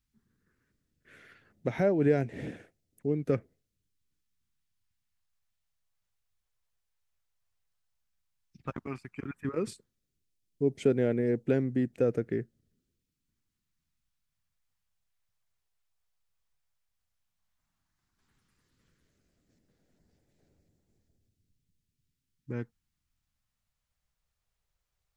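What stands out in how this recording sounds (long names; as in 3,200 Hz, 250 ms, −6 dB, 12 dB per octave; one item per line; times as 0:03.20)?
phaser sweep stages 2, 0.11 Hz, lowest notch 260–1,100 Hz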